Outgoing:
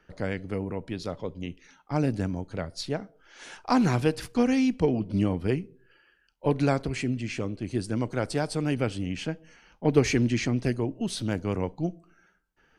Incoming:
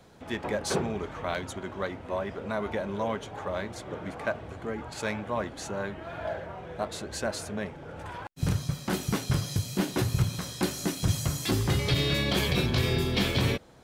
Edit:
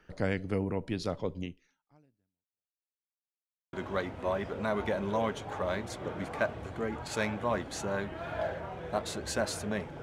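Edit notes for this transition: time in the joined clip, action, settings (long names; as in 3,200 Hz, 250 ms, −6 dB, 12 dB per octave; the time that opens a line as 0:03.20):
outgoing
0:01.40–0:02.96: fade out exponential
0:02.96–0:03.73: silence
0:03.73: continue with incoming from 0:01.59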